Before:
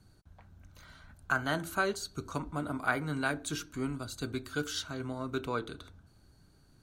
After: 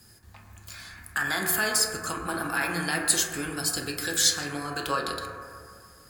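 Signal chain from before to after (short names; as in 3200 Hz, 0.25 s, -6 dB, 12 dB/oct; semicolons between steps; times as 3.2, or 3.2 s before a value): low shelf 160 Hz +11 dB; limiter -24.5 dBFS, peak gain reduction 11 dB; tilt +4 dB/oct; reverb RT60 2.5 s, pre-delay 8 ms, DRR 0.5 dB; varispeed +12%; gain +6.5 dB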